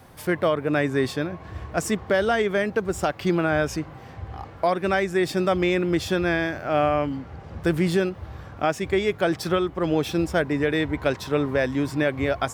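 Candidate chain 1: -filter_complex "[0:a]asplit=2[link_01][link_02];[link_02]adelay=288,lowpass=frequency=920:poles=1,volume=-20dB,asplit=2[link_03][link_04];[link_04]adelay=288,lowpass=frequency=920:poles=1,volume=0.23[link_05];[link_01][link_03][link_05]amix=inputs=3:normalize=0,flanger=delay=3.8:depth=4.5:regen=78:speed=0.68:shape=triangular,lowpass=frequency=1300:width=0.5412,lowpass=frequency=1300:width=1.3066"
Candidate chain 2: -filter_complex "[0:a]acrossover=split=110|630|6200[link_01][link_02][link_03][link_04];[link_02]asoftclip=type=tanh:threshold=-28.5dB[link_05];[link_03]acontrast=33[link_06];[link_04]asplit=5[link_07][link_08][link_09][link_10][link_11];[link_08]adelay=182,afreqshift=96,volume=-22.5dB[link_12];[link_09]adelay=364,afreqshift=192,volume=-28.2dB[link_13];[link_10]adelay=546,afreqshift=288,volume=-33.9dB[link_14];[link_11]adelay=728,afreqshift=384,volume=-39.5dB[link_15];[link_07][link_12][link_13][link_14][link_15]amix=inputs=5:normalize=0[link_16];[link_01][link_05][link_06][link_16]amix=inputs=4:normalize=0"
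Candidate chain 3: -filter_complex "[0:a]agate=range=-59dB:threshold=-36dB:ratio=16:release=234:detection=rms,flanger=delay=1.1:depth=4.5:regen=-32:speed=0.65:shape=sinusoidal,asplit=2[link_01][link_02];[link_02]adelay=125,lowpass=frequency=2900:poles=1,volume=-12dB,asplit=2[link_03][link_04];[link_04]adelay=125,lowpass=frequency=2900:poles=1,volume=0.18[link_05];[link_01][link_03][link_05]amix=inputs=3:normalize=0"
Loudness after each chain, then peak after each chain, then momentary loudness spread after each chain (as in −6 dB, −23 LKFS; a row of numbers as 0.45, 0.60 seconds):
−29.0, −23.5, −27.5 LKFS; −12.5, −8.0, −12.5 dBFS; 9, 10, 9 LU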